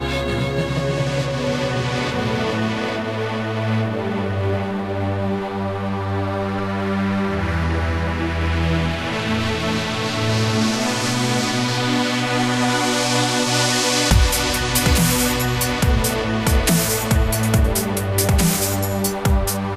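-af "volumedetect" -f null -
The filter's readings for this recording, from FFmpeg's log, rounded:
mean_volume: -19.5 dB
max_volume: -4.7 dB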